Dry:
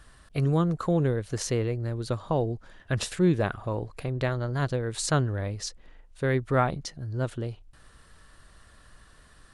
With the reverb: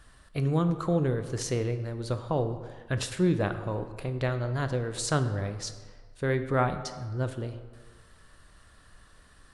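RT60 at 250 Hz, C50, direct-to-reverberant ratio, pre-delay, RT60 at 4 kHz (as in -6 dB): 1.5 s, 10.5 dB, 8.5 dB, 8 ms, 0.95 s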